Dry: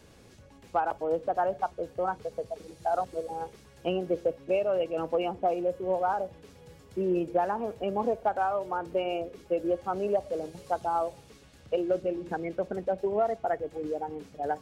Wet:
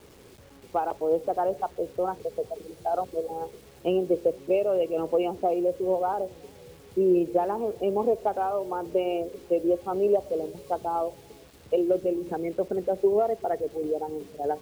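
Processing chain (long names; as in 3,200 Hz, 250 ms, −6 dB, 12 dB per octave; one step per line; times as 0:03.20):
graphic EQ with 15 bands 400 Hz +8 dB, 1,600 Hz −7 dB, 6,300 Hz −6 dB
delay with a low-pass on its return 381 ms, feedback 33%, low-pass 450 Hz, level −22 dB
bit reduction 9 bits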